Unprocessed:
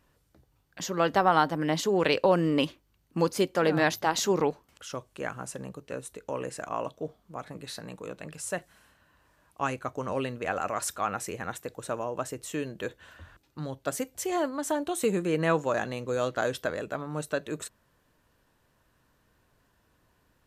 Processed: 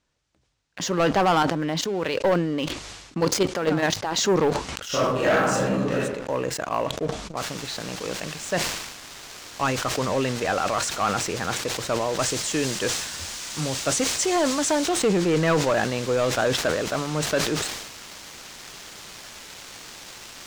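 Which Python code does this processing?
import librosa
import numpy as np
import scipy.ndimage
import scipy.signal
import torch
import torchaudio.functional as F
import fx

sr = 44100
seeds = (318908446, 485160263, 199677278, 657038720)

y = fx.level_steps(x, sr, step_db=11, at=(1.38, 4.12))
y = fx.reverb_throw(y, sr, start_s=4.87, length_s=1.05, rt60_s=0.89, drr_db=-10.5)
y = fx.noise_floor_step(y, sr, seeds[0], at_s=7.37, before_db=-65, after_db=-41, tilt_db=0.0)
y = fx.high_shelf(y, sr, hz=4800.0, db=11.0, at=(12.19, 14.89))
y = scipy.signal.sosfilt(scipy.signal.butter(4, 7100.0, 'lowpass', fs=sr, output='sos'), y)
y = fx.leveller(y, sr, passes=3)
y = fx.sustainer(y, sr, db_per_s=49.0)
y = y * 10.0 ** (-4.0 / 20.0)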